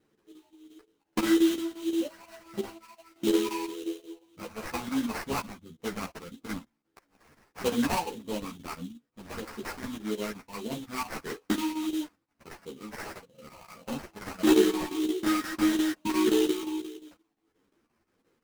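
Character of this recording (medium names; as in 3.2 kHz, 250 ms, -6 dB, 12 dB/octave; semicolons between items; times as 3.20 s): phasing stages 12, 1.6 Hz, lowest notch 440–1300 Hz; aliases and images of a low sample rate 3.5 kHz, jitter 20%; chopped level 5.7 Hz, depth 65%, duty 80%; a shimmering, thickened sound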